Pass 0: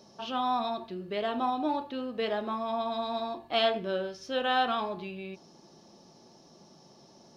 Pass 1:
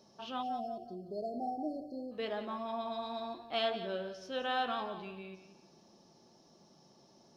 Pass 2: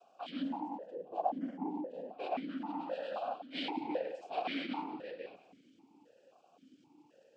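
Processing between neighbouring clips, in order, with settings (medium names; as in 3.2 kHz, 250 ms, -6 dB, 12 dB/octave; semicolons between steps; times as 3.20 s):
spectral selection erased 0.42–2.12 s, 810–4200 Hz; modulated delay 178 ms, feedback 31%, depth 57 cents, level -12 dB; trim -7 dB
noise-vocoded speech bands 8; stepped vowel filter 3.8 Hz; trim +10.5 dB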